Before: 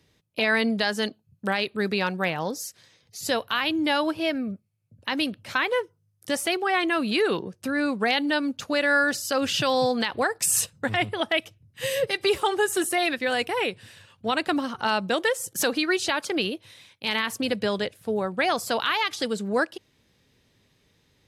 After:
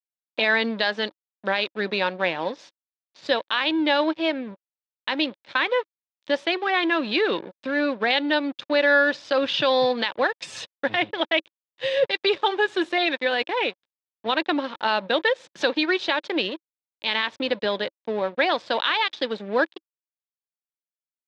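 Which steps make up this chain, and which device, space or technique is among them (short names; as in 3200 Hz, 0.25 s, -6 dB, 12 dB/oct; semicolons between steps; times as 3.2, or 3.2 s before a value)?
blown loudspeaker (crossover distortion -38 dBFS; speaker cabinet 170–4700 Hz, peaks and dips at 320 Hz +6 dB, 560 Hz +8 dB, 940 Hz +6 dB, 1700 Hz +5 dB, 2400 Hz +4 dB, 3600 Hz +9 dB); gain -1.5 dB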